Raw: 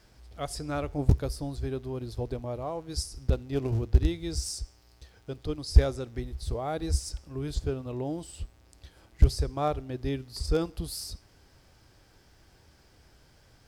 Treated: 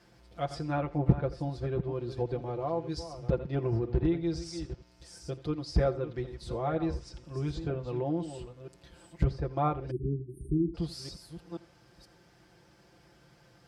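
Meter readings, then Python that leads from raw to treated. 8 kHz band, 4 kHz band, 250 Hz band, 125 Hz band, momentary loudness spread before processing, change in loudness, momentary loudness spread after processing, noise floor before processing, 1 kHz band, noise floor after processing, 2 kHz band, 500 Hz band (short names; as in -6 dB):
-12.5 dB, -7.0 dB, +2.0 dB, -2.5 dB, 13 LU, -2.0 dB, 15 LU, -60 dBFS, +1.0 dB, -61 dBFS, -1.5 dB, +0.5 dB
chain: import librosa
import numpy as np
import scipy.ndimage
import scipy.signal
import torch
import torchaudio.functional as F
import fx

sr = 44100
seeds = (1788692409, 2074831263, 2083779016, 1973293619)

p1 = fx.reverse_delay(x, sr, ms=482, wet_db=-11.5)
p2 = scipy.signal.sosfilt(scipy.signal.butter(2, 88.0, 'highpass', fs=sr, output='sos'), p1)
p3 = fx.env_lowpass_down(p2, sr, base_hz=2100.0, full_db=-26.5)
p4 = fx.high_shelf(p3, sr, hz=3600.0, db=-8.0)
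p5 = p4 + 0.74 * np.pad(p4, (int(5.8 * sr / 1000.0), 0))[:len(p4)]
p6 = p5 + fx.echo_single(p5, sr, ms=83, db=-18.0, dry=0)
y = fx.spec_erase(p6, sr, start_s=9.91, length_s=0.83, low_hz=450.0, high_hz=8500.0)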